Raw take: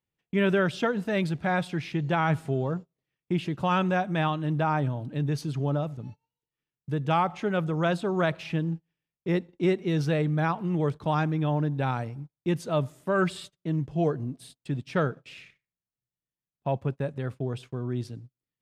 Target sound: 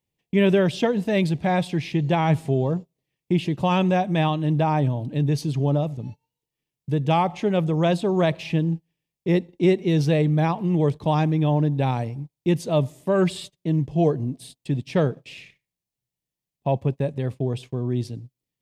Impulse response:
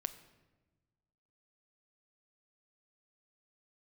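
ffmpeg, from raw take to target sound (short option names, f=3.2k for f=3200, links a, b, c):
-af "equalizer=f=1.4k:t=o:w=0.51:g=-14,volume=6dB"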